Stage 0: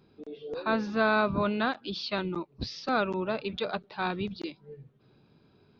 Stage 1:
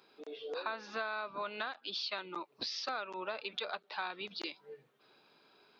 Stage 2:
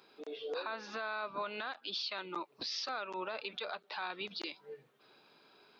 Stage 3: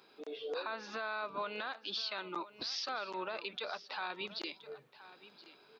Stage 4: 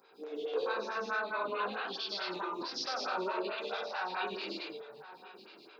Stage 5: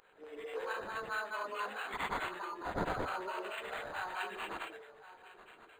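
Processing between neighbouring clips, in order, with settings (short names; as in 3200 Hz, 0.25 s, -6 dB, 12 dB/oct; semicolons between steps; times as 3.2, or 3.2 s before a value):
Bessel high-pass 840 Hz, order 2; compressor 6:1, threshold -42 dBFS, peak gain reduction 17.5 dB; gain +6 dB
limiter -30.5 dBFS, peak gain reduction 7.5 dB; gain +2 dB
echo 1.024 s -16.5 dB
non-linear reverb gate 0.28 s flat, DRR -6 dB; photocell phaser 4.6 Hz
tilt +3.5 dB/oct; decimation joined by straight lines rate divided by 8×; gain -3 dB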